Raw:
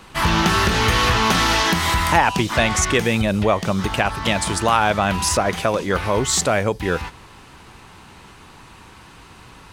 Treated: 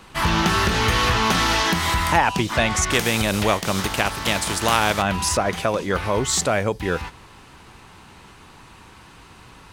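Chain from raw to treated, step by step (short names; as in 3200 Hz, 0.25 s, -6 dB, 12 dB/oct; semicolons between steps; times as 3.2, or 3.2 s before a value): 2.9–5.01 spectral contrast lowered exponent 0.63; gain -2 dB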